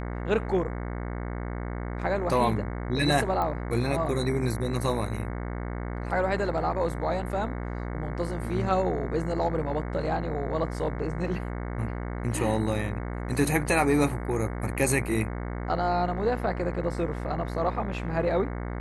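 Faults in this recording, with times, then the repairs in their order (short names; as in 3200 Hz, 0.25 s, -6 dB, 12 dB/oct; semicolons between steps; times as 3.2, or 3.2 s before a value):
buzz 60 Hz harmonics 37 -33 dBFS
3.42 pop -18 dBFS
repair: de-click; de-hum 60 Hz, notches 37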